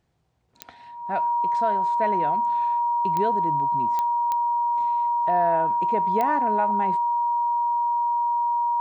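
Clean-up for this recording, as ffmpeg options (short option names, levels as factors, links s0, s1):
-af "adeclick=t=4,bandreject=f=950:w=30"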